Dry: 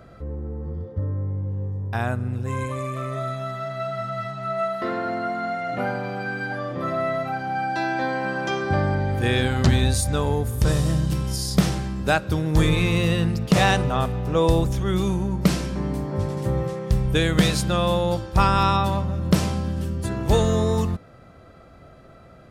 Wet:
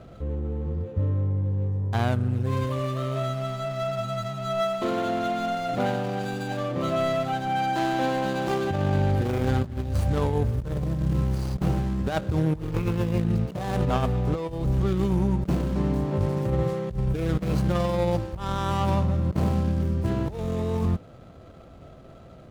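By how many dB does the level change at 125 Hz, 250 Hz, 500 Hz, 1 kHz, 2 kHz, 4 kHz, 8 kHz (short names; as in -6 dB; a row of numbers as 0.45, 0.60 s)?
-1.5, -2.5, -2.5, -3.5, -8.5, -9.0, -12.5 dB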